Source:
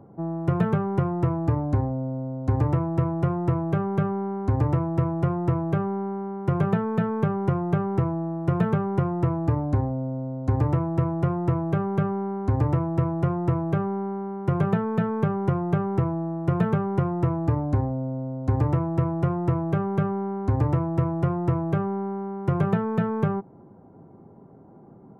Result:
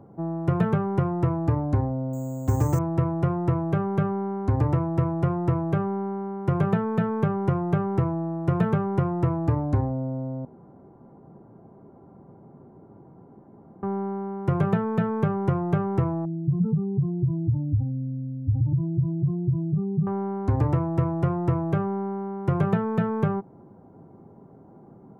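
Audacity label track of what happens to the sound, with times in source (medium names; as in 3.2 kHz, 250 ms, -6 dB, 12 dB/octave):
2.130000	2.790000	careless resampling rate divided by 6×, down none, up hold
10.450000	13.830000	room tone
16.250000	20.070000	spectral contrast enhancement exponent 3.2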